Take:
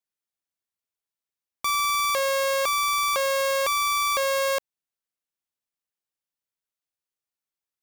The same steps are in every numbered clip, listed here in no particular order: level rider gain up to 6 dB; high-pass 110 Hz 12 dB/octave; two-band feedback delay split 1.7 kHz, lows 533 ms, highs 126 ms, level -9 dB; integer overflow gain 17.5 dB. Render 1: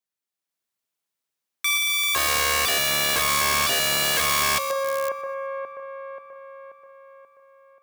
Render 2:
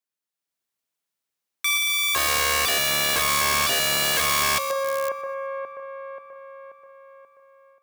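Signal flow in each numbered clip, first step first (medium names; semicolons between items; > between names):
level rider > two-band feedback delay > integer overflow > high-pass; two-band feedback delay > level rider > integer overflow > high-pass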